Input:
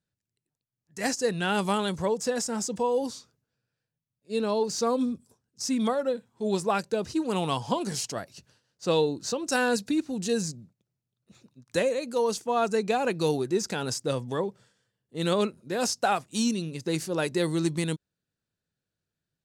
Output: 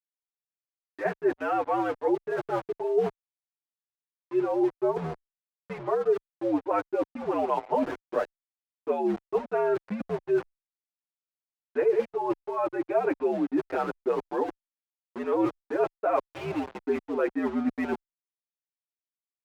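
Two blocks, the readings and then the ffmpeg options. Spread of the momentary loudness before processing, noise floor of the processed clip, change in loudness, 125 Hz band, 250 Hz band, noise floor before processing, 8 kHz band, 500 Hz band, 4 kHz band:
7 LU, under -85 dBFS, -0.5 dB, -9.5 dB, -1.5 dB, under -85 dBFS, under -25 dB, +1.0 dB, under -15 dB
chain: -filter_complex "[0:a]highpass=f=340:t=q:w=0.5412,highpass=f=340:t=q:w=1.307,lowpass=f=2.5k:t=q:w=0.5176,lowpass=f=2.5k:t=q:w=0.7071,lowpass=f=2.5k:t=q:w=1.932,afreqshift=-84,aeval=exprs='val(0)*gte(abs(val(0)),0.0119)':c=same,areverse,acompressor=threshold=-35dB:ratio=5,areverse,equalizer=f=610:t=o:w=2.8:g=10.5,acontrast=31,aemphasis=mode=reproduction:type=cd,anlmdn=0.0631,asplit=2[a][b];[b]adelay=7,afreqshift=-0.31[c];[a][c]amix=inputs=2:normalize=1"

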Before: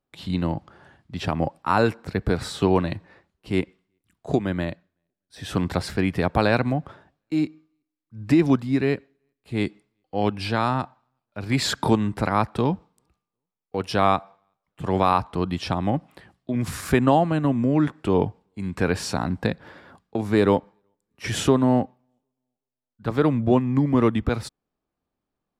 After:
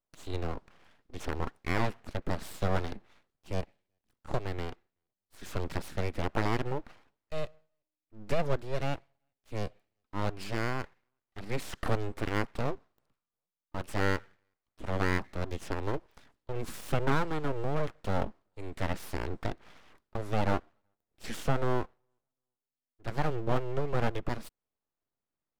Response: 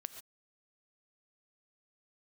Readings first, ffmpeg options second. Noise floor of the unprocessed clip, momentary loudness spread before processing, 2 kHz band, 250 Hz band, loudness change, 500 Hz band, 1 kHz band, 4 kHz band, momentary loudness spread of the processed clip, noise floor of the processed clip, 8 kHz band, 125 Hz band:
-85 dBFS, 13 LU, -7.0 dB, -15.5 dB, -11.0 dB, -10.5 dB, -11.0 dB, -11.5 dB, 12 LU, under -85 dBFS, -11.5 dB, -9.0 dB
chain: -filter_complex "[0:a]acrossover=split=1600[a][b];[b]alimiter=level_in=1dB:limit=-24dB:level=0:latency=1:release=273,volume=-1dB[c];[a][c]amix=inputs=2:normalize=0,aeval=exprs='abs(val(0))':c=same,volume=-7.5dB"

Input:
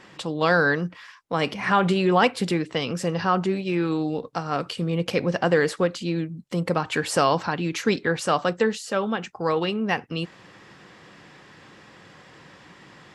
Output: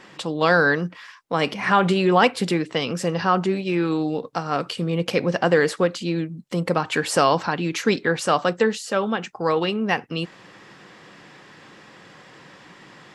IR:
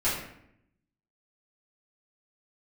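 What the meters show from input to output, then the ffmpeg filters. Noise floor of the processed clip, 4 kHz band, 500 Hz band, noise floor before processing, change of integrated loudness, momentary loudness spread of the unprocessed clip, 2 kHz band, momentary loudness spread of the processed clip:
-48 dBFS, +2.5 dB, +2.5 dB, -50 dBFS, +2.0 dB, 9 LU, +2.5 dB, 9 LU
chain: -af "equalizer=f=70:w=1.4:g=-11.5,volume=2.5dB"

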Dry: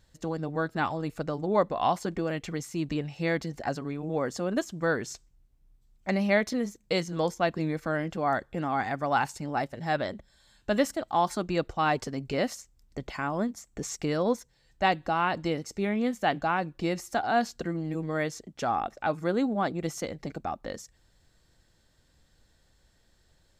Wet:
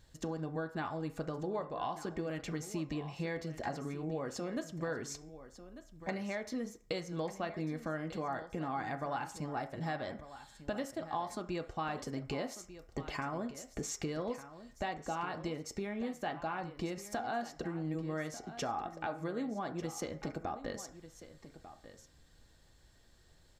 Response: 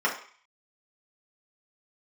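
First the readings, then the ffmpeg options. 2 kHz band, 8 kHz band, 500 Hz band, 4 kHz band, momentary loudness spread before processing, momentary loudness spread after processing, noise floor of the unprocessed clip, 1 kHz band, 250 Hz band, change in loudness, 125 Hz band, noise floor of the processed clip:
-11.0 dB, -5.0 dB, -10.0 dB, -9.0 dB, 9 LU, 8 LU, -66 dBFS, -10.5 dB, -8.5 dB, -9.5 dB, -7.5 dB, -63 dBFS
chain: -filter_complex "[0:a]acompressor=threshold=-36dB:ratio=6,aecho=1:1:1195:0.2,asplit=2[a][b];[1:a]atrim=start_sample=2205[c];[b][c]afir=irnorm=-1:irlink=0,volume=-19dB[d];[a][d]amix=inputs=2:normalize=0,volume=1dB"

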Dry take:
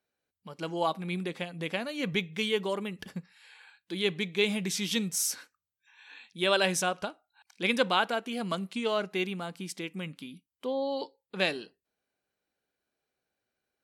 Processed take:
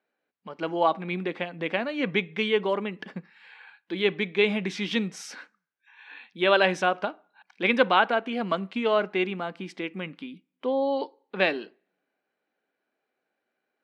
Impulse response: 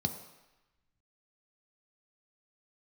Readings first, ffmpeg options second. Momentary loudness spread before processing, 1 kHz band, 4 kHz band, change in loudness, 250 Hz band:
15 LU, +6.5 dB, 0.0 dB, +4.5 dB, +3.5 dB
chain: -filter_complex "[0:a]highpass=290,lowpass=2.4k,asplit=2[a][b];[1:a]atrim=start_sample=2205,asetrate=74970,aresample=44100[c];[b][c]afir=irnorm=-1:irlink=0,volume=-19.5dB[d];[a][d]amix=inputs=2:normalize=0,volume=7.5dB"

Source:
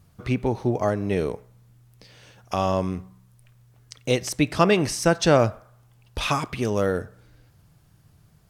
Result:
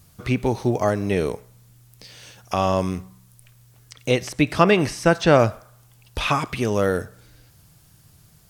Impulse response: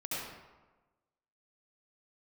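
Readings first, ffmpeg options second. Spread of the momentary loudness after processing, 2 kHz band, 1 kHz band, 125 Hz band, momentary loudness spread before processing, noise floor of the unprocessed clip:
12 LU, +3.5 dB, +3.0 dB, +2.0 dB, 12 LU, -58 dBFS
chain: -filter_complex "[0:a]highshelf=f=3.2k:g=11.5,acrossover=split=2900[a][b];[b]acompressor=threshold=-39dB:ratio=4:attack=1:release=60[c];[a][c]amix=inputs=2:normalize=0,volume=2dB"

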